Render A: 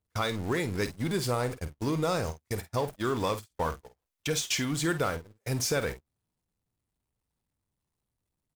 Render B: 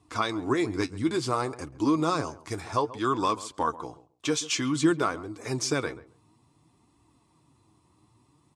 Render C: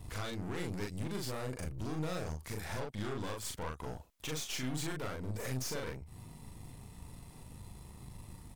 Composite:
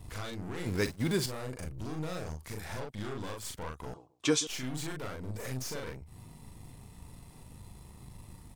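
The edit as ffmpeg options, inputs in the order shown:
-filter_complex "[2:a]asplit=3[s0][s1][s2];[s0]atrim=end=0.662[s3];[0:a]atrim=start=0.658:end=1.262[s4];[s1]atrim=start=1.258:end=3.942[s5];[1:a]atrim=start=3.938:end=4.472[s6];[s2]atrim=start=4.468[s7];[s3][s4]acrossfade=d=0.004:c1=hsin:c2=hsin[s8];[s8][s5]acrossfade=d=0.004:c1=hsin:c2=hsin[s9];[s9][s6]acrossfade=d=0.004:c1=hsin:c2=hsin[s10];[s10][s7]acrossfade=d=0.004:c1=hsin:c2=hsin"

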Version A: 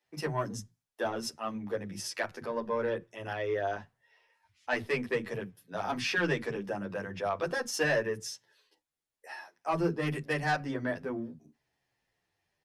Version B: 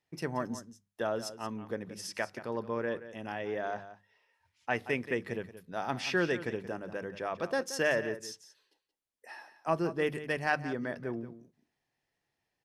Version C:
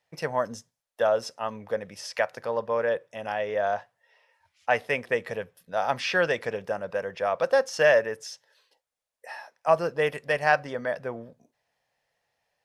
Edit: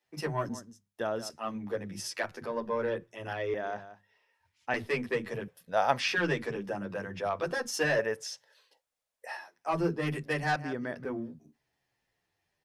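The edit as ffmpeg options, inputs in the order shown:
-filter_complex "[1:a]asplit=3[s0][s1][s2];[2:a]asplit=2[s3][s4];[0:a]asplit=6[s5][s6][s7][s8][s9][s10];[s5]atrim=end=0.492[s11];[s0]atrim=start=0.488:end=1.302[s12];[s6]atrim=start=1.298:end=3.542[s13];[s1]atrim=start=3.538:end=4.742[s14];[s7]atrim=start=4.738:end=5.482[s15];[s3]atrim=start=5.478:end=6.082[s16];[s8]atrim=start=6.078:end=7.992[s17];[s4]atrim=start=7.988:end=9.372[s18];[s9]atrim=start=9.368:end=10.562[s19];[s2]atrim=start=10.558:end=11.052[s20];[s10]atrim=start=11.048[s21];[s11][s12]acrossfade=d=0.004:c1=hsin:c2=hsin[s22];[s22][s13]acrossfade=d=0.004:c1=hsin:c2=hsin[s23];[s23][s14]acrossfade=d=0.004:c1=hsin:c2=hsin[s24];[s24][s15]acrossfade=d=0.004:c1=hsin:c2=hsin[s25];[s25][s16]acrossfade=d=0.004:c1=hsin:c2=hsin[s26];[s26][s17]acrossfade=d=0.004:c1=hsin:c2=hsin[s27];[s27][s18]acrossfade=d=0.004:c1=hsin:c2=hsin[s28];[s28][s19]acrossfade=d=0.004:c1=hsin:c2=hsin[s29];[s29][s20]acrossfade=d=0.004:c1=hsin:c2=hsin[s30];[s30][s21]acrossfade=d=0.004:c1=hsin:c2=hsin"

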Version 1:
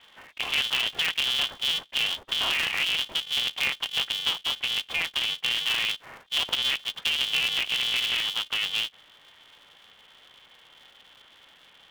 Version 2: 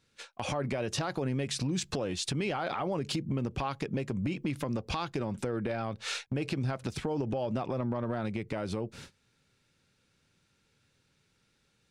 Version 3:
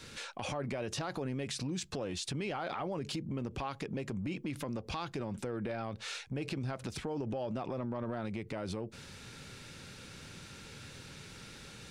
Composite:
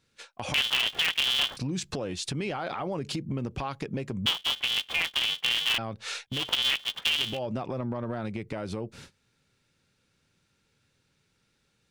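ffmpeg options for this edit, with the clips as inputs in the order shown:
-filter_complex "[0:a]asplit=3[s0][s1][s2];[1:a]asplit=4[s3][s4][s5][s6];[s3]atrim=end=0.542[s7];[s0]atrim=start=0.538:end=1.572[s8];[s4]atrim=start=1.568:end=4.262[s9];[s1]atrim=start=4.258:end=5.782[s10];[s5]atrim=start=5.778:end=6.51[s11];[s2]atrim=start=6.27:end=7.4[s12];[s6]atrim=start=7.16[s13];[s7][s8]acrossfade=d=0.004:c1=hsin:c2=hsin[s14];[s14][s9]acrossfade=d=0.004:c1=hsin:c2=hsin[s15];[s15][s10]acrossfade=d=0.004:c1=hsin:c2=hsin[s16];[s16][s11]acrossfade=d=0.004:c1=hsin:c2=hsin[s17];[s17][s12]acrossfade=d=0.24:c1=tri:c2=tri[s18];[s18][s13]acrossfade=d=0.24:c1=tri:c2=tri"

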